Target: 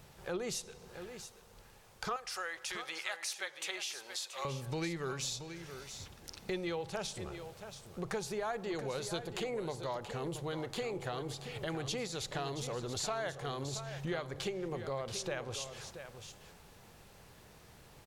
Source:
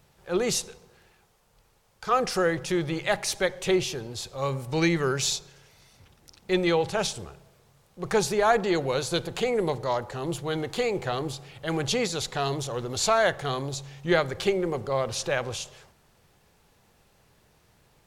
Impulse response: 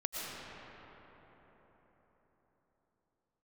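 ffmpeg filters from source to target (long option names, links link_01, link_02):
-filter_complex "[0:a]asettb=1/sr,asplit=3[link_01][link_02][link_03];[link_01]atrim=end=2.164[link_04];[link_02]atrim=start=2.16:end=4.45,asetpts=PTS-STARTPTS,afade=type=in:duration=0.004:curve=qsin,afade=type=out:start_time=2.286:duration=0.004:curve=qsin,highpass=1100[link_05];[link_03]atrim=start=4.446[link_06];[link_04][link_05]acrossfade=duration=0.004:curve1=hsin:curve2=qsin[link_07];[link_07][link_06]acrossfade=duration=0.004:curve1=qsin:curve2=hsin,acompressor=threshold=-43dB:ratio=4,aecho=1:1:679:0.316,volume=4dB"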